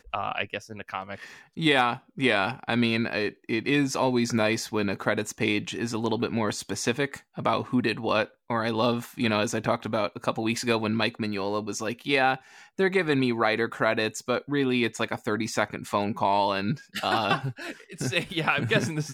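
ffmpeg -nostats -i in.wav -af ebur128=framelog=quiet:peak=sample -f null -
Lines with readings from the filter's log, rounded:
Integrated loudness:
  I:         -26.6 LUFS
  Threshold: -36.7 LUFS
Loudness range:
  LRA:         2.2 LU
  Threshold: -46.6 LUFS
  LRA low:   -27.7 LUFS
  LRA high:  -25.5 LUFS
Sample peak:
  Peak:       -7.9 dBFS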